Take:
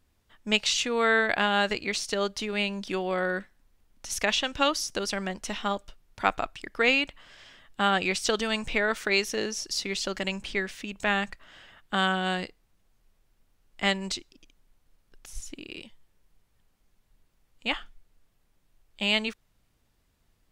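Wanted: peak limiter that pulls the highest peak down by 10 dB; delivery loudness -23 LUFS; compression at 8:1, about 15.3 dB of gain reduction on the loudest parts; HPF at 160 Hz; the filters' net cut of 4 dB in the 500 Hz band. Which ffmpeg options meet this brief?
-af "highpass=160,equalizer=f=500:t=o:g=-5,acompressor=threshold=-35dB:ratio=8,volume=18dB,alimiter=limit=-11.5dB:level=0:latency=1"

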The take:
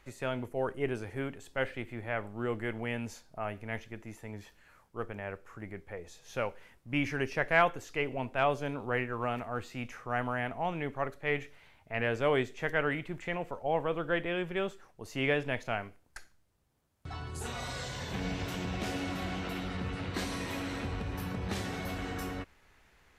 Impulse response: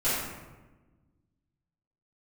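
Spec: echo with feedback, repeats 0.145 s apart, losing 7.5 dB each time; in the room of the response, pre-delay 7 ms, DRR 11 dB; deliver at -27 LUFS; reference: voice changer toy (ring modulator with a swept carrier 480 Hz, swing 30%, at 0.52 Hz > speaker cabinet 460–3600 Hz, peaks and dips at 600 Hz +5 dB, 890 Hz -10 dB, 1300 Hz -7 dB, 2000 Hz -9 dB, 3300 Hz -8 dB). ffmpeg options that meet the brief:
-filter_complex "[0:a]aecho=1:1:145|290|435|580|725:0.422|0.177|0.0744|0.0312|0.0131,asplit=2[a][b];[1:a]atrim=start_sample=2205,adelay=7[c];[b][c]afir=irnorm=-1:irlink=0,volume=-23dB[d];[a][d]amix=inputs=2:normalize=0,aeval=exprs='val(0)*sin(2*PI*480*n/s+480*0.3/0.52*sin(2*PI*0.52*n/s))':c=same,highpass=460,equalizer=f=600:t=q:w=4:g=5,equalizer=f=890:t=q:w=4:g=-10,equalizer=f=1.3k:t=q:w=4:g=-7,equalizer=f=2k:t=q:w=4:g=-9,equalizer=f=3.3k:t=q:w=4:g=-8,lowpass=f=3.6k:w=0.5412,lowpass=f=3.6k:w=1.3066,volume=14dB"

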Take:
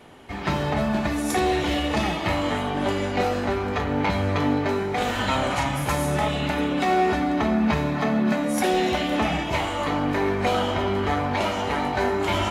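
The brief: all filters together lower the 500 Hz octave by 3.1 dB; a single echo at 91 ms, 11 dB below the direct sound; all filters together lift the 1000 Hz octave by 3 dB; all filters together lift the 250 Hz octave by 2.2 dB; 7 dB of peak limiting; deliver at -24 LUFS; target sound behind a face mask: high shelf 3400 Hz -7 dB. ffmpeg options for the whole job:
-af "equalizer=f=250:t=o:g=4.5,equalizer=f=500:t=o:g=-8,equalizer=f=1k:t=o:g=7.5,alimiter=limit=-15dB:level=0:latency=1,highshelf=f=3.4k:g=-7,aecho=1:1:91:0.282,volume=0.5dB"

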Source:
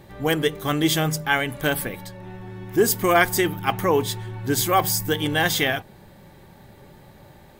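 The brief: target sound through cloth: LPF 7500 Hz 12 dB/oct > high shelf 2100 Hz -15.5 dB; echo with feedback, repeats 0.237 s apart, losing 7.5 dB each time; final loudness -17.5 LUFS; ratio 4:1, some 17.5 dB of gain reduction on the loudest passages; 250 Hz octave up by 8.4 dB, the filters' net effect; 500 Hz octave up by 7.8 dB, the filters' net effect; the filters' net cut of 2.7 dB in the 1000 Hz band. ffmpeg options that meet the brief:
-af "equalizer=f=250:t=o:g=9,equalizer=f=500:t=o:g=9,equalizer=f=1k:t=o:g=-6,acompressor=threshold=-28dB:ratio=4,lowpass=7.5k,highshelf=f=2.1k:g=-15.5,aecho=1:1:237|474|711|948|1185:0.422|0.177|0.0744|0.0312|0.0131,volume=13dB"

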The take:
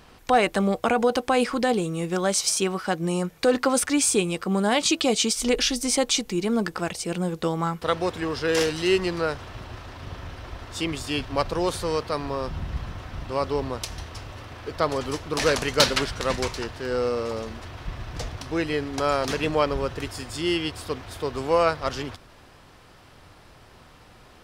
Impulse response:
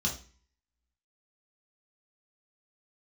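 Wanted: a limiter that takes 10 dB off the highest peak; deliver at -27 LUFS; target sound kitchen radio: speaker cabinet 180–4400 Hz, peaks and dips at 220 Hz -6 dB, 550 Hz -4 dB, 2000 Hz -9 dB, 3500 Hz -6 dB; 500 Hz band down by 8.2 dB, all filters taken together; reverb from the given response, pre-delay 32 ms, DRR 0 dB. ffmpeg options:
-filter_complex "[0:a]equalizer=f=500:t=o:g=-7.5,alimiter=limit=-16.5dB:level=0:latency=1,asplit=2[a][b];[1:a]atrim=start_sample=2205,adelay=32[c];[b][c]afir=irnorm=-1:irlink=0,volume=-5.5dB[d];[a][d]amix=inputs=2:normalize=0,highpass=180,equalizer=f=220:t=q:w=4:g=-6,equalizer=f=550:t=q:w=4:g=-4,equalizer=f=2k:t=q:w=4:g=-9,equalizer=f=3.5k:t=q:w=4:g=-6,lowpass=f=4.4k:w=0.5412,lowpass=f=4.4k:w=1.3066,volume=1dB"

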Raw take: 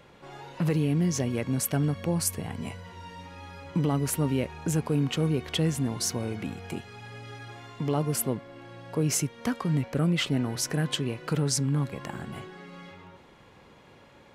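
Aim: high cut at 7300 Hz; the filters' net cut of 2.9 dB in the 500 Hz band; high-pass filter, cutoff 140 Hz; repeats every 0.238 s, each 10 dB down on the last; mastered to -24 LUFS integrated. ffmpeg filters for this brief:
-af "highpass=140,lowpass=7.3k,equalizer=f=500:t=o:g=-3.5,aecho=1:1:238|476|714|952:0.316|0.101|0.0324|0.0104,volume=6.5dB"

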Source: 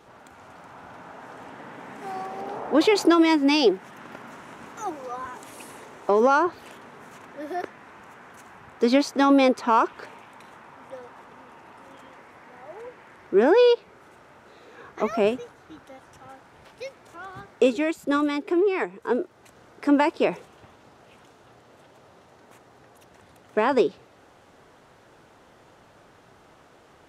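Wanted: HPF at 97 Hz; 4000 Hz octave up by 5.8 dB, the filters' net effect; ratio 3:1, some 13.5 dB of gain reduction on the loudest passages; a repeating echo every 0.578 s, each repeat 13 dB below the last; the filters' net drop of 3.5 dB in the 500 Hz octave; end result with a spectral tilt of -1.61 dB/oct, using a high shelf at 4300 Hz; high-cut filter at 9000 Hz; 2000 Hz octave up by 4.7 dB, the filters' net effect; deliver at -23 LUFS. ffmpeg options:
-af "highpass=97,lowpass=9k,equalizer=f=500:t=o:g=-4.5,equalizer=f=2k:t=o:g=5,equalizer=f=4k:t=o:g=8,highshelf=f=4.3k:g=-4,acompressor=threshold=-34dB:ratio=3,aecho=1:1:578|1156|1734:0.224|0.0493|0.0108,volume=14.5dB"

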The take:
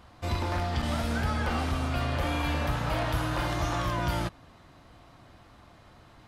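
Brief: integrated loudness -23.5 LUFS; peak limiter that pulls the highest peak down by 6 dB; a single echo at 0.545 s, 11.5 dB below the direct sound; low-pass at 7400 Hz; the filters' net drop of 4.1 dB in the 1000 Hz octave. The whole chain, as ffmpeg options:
-af "lowpass=7.4k,equalizer=f=1k:t=o:g=-5.5,alimiter=limit=-23.5dB:level=0:latency=1,aecho=1:1:545:0.266,volume=9dB"

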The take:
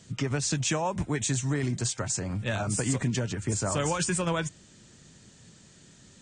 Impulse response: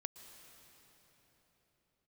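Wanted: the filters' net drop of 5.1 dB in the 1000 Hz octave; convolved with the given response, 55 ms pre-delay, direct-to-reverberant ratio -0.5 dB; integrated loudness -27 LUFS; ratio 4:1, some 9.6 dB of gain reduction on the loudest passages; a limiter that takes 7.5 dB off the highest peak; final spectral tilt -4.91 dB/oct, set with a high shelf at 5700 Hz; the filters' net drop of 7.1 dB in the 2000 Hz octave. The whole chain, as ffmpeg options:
-filter_complex "[0:a]equalizer=f=1k:t=o:g=-4.5,equalizer=f=2k:t=o:g=-7,highshelf=f=5.7k:g=-7.5,acompressor=threshold=-36dB:ratio=4,alimiter=level_in=8dB:limit=-24dB:level=0:latency=1,volume=-8dB,asplit=2[a][b];[1:a]atrim=start_sample=2205,adelay=55[c];[b][c]afir=irnorm=-1:irlink=0,volume=4dB[d];[a][d]amix=inputs=2:normalize=0,volume=10dB"

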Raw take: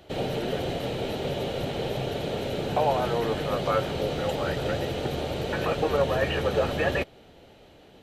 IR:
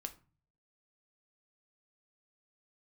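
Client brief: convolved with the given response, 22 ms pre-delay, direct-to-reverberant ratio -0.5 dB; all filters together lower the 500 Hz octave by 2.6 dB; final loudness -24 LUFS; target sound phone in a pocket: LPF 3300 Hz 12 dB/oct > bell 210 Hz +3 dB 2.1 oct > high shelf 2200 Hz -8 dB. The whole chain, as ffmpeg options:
-filter_complex "[0:a]equalizer=f=500:t=o:g=-4,asplit=2[a][b];[1:a]atrim=start_sample=2205,adelay=22[c];[b][c]afir=irnorm=-1:irlink=0,volume=3.5dB[d];[a][d]amix=inputs=2:normalize=0,lowpass=3.3k,equalizer=f=210:t=o:w=2.1:g=3,highshelf=f=2.2k:g=-8,volume=2dB"

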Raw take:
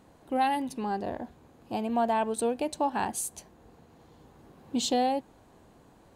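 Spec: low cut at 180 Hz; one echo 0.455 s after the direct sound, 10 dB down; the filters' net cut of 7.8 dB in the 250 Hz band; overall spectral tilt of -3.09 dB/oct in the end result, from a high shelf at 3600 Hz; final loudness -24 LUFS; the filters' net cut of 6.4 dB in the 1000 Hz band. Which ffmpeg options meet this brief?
-af "highpass=180,equalizer=f=250:t=o:g=-7,equalizer=f=1k:t=o:g=-8,highshelf=f=3.6k:g=-8.5,aecho=1:1:455:0.316,volume=12dB"

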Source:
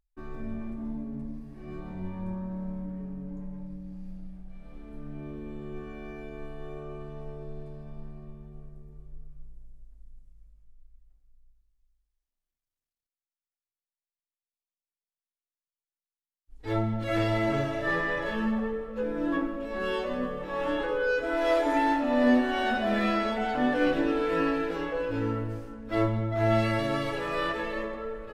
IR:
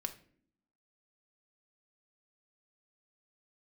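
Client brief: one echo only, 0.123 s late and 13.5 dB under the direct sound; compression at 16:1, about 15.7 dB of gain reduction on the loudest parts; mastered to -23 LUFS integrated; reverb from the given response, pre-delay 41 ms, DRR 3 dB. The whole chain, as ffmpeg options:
-filter_complex "[0:a]acompressor=threshold=-33dB:ratio=16,aecho=1:1:123:0.211,asplit=2[a][b];[1:a]atrim=start_sample=2205,adelay=41[c];[b][c]afir=irnorm=-1:irlink=0,volume=-2dB[d];[a][d]amix=inputs=2:normalize=0,volume=14dB"

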